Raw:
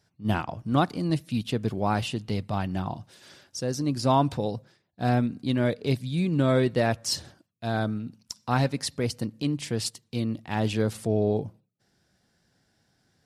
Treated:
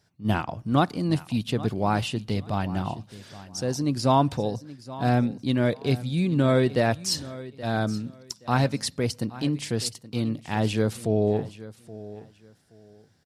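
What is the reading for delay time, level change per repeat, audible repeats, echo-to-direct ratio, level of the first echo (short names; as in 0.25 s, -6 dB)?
0.824 s, -12.5 dB, 2, -17.0 dB, -17.0 dB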